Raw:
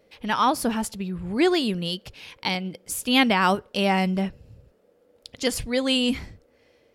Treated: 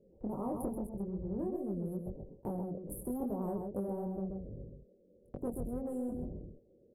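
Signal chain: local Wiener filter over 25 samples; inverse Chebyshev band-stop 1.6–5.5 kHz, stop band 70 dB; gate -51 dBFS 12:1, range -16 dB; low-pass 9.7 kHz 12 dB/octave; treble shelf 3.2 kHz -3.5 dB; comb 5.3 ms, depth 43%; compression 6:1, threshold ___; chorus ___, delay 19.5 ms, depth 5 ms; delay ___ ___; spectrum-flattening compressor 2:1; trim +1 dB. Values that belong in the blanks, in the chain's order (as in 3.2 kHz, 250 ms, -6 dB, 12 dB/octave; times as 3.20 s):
-31 dBFS, 2.4 Hz, 131 ms, -8.5 dB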